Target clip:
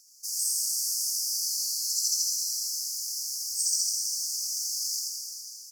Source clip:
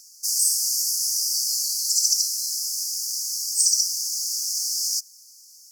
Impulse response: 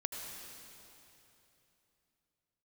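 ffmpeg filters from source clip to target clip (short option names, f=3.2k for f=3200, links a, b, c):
-filter_complex "[0:a]aecho=1:1:84:0.668[a];[1:a]atrim=start_sample=2205[b];[a][b]afir=irnorm=-1:irlink=0,volume=-8dB"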